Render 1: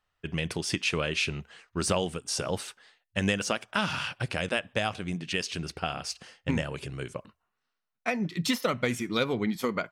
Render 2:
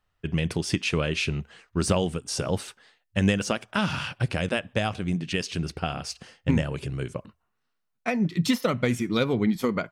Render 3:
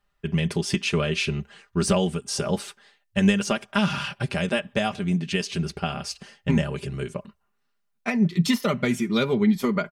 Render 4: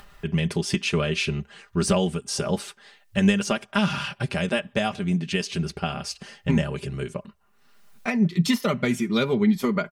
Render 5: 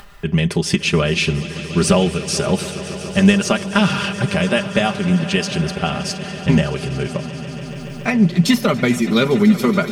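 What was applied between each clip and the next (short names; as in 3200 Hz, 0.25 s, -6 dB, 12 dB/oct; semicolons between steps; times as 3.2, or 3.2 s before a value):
low shelf 380 Hz +8 dB
comb 5 ms, depth 71%
upward compressor, threshold -30 dBFS
swelling echo 0.142 s, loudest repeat 5, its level -18 dB; gain +7 dB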